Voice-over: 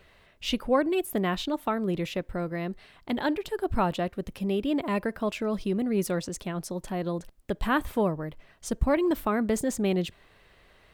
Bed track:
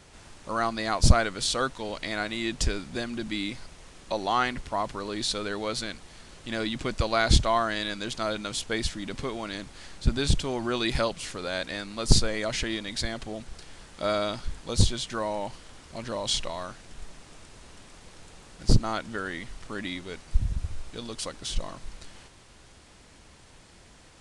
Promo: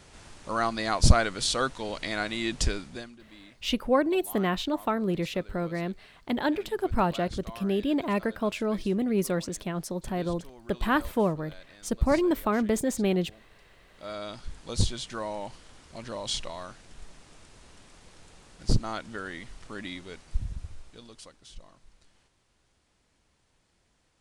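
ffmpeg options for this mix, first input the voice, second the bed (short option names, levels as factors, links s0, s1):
-filter_complex "[0:a]adelay=3200,volume=1.06[s0];[1:a]volume=6.31,afade=t=out:st=2.67:d=0.5:silence=0.1,afade=t=in:st=13.86:d=0.79:silence=0.158489,afade=t=out:st=20.05:d=1.35:silence=0.223872[s1];[s0][s1]amix=inputs=2:normalize=0"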